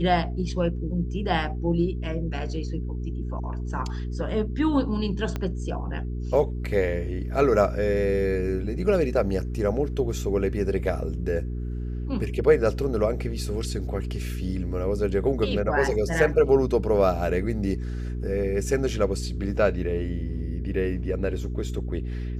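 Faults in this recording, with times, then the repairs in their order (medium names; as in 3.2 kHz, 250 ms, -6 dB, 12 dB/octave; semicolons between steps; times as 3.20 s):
hum 60 Hz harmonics 7 -30 dBFS
5.36 s: pop -16 dBFS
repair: de-click; de-hum 60 Hz, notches 7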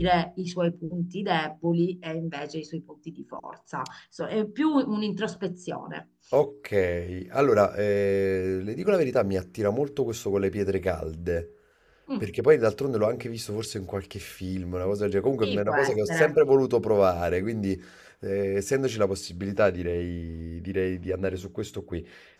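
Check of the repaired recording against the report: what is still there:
5.36 s: pop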